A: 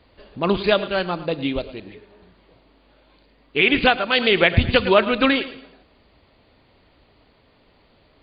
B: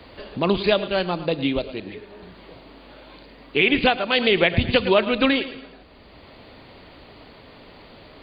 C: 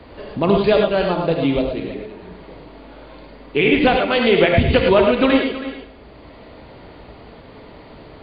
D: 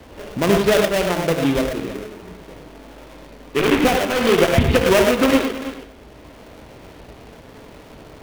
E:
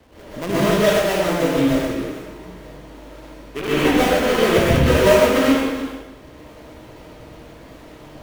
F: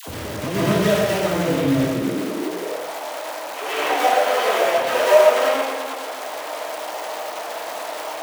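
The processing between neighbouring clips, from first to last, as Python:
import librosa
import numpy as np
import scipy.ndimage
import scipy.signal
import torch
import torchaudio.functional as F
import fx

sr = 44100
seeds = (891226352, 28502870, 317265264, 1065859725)

y1 = fx.dynamic_eq(x, sr, hz=1400.0, q=2.1, threshold_db=-36.0, ratio=4.0, max_db=-5)
y1 = fx.band_squash(y1, sr, depth_pct=40)
y2 = fx.high_shelf(y1, sr, hz=2400.0, db=-11.5)
y2 = y2 + 10.0 ** (-14.5 / 20.0) * np.pad(y2, (int(324 * sr / 1000.0), 0))[:len(y2)]
y2 = fx.rev_gated(y2, sr, seeds[0], gate_ms=130, shape='rising', drr_db=2.0)
y2 = y2 * librosa.db_to_amplitude(4.0)
y3 = fx.dead_time(y2, sr, dead_ms=0.29)
y4 = fx.rev_plate(y3, sr, seeds[1], rt60_s=0.92, hf_ratio=0.8, predelay_ms=110, drr_db=-9.0)
y4 = y4 * librosa.db_to_amplitude(-9.5)
y5 = y4 + 0.5 * 10.0 ** (-21.0 / 20.0) * np.sign(y4)
y5 = fx.filter_sweep_highpass(y5, sr, from_hz=100.0, to_hz=700.0, start_s=1.73, end_s=2.9, q=2.6)
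y5 = fx.dispersion(y5, sr, late='lows', ms=75.0, hz=780.0)
y5 = y5 * librosa.db_to_amplitude(-4.5)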